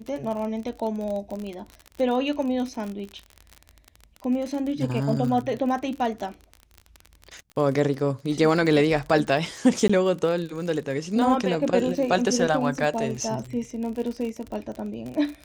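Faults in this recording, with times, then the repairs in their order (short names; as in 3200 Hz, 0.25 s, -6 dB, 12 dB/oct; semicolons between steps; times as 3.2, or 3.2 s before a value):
crackle 41/s -30 dBFS
9.88–9.89 gap 15 ms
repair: de-click; interpolate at 9.88, 15 ms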